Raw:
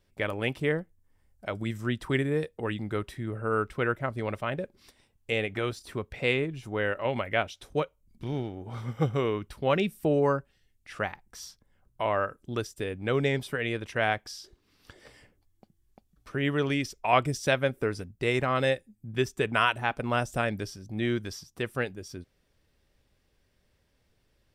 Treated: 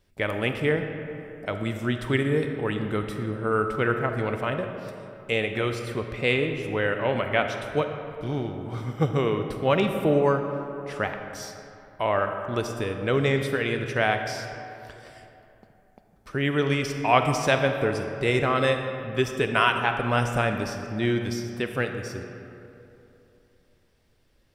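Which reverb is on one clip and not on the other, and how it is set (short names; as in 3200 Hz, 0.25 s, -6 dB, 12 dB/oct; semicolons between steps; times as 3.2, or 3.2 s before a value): digital reverb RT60 3 s, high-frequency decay 0.5×, pre-delay 5 ms, DRR 5.5 dB; gain +3 dB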